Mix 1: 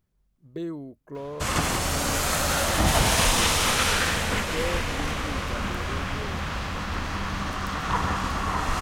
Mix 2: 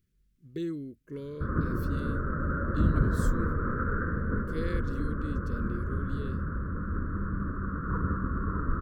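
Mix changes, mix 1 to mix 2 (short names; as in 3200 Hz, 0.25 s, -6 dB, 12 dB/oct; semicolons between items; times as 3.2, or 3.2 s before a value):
background: add steep low-pass 1500 Hz 72 dB/oct; master: add Butterworth band-stop 790 Hz, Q 0.75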